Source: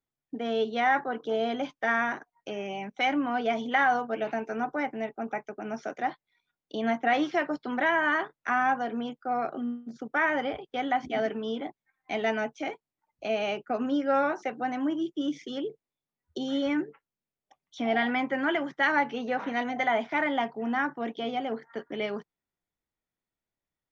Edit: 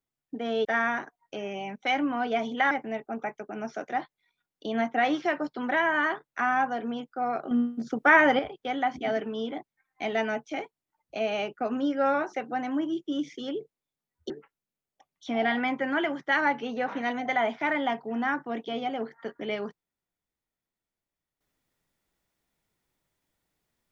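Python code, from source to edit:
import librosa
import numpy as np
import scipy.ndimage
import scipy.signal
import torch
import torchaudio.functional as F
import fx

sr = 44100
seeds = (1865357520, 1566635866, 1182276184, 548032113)

y = fx.edit(x, sr, fx.cut(start_s=0.65, length_s=1.14),
    fx.cut(start_s=3.85, length_s=0.95),
    fx.clip_gain(start_s=9.6, length_s=0.88, db=7.5),
    fx.cut(start_s=16.39, length_s=0.42), tone=tone)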